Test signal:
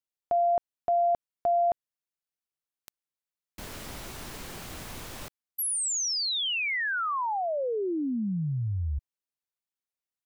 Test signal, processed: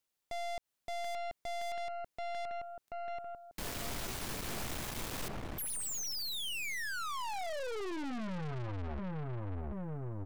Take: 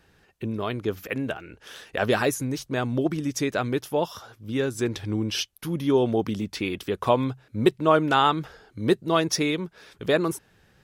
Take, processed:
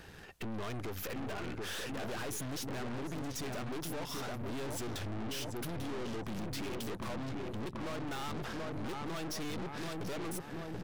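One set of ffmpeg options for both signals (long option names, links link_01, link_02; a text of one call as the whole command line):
ffmpeg -i in.wav -filter_complex "[0:a]acompressor=threshold=-34dB:ratio=5:attack=3.1:release=116:detection=rms,asplit=2[link_01][link_02];[link_02]adelay=733,lowpass=frequency=1100:poles=1,volume=-5dB,asplit=2[link_03][link_04];[link_04]adelay=733,lowpass=frequency=1100:poles=1,volume=0.55,asplit=2[link_05][link_06];[link_06]adelay=733,lowpass=frequency=1100:poles=1,volume=0.55,asplit=2[link_07][link_08];[link_08]adelay=733,lowpass=frequency=1100:poles=1,volume=0.55,asplit=2[link_09][link_10];[link_10]adelay=733,lowpass=frequency=1100:poles=1,volume=0.55,asplit=2[link_11][link_12];[link_12]adelay=733,lowpass=frequency=1100:poles=1,volume=0.55,asplit=2[link_13][link_14];[link_14]adelay=733,lowpass=frequency=1100:poles=1,volume=0.55[link_15];[link_03][link_05][link_07][link_09][link_11][link_13][link_15]amix=inputs=7:normalize=0[link_16];[link_01][link_16]amix=inputs=2:normalize=0,aeval=exprs='(tanh(316*val(0)+0.7)-tanh(0.7))/316':channel_layout=same,volume=11.5dB" out.wav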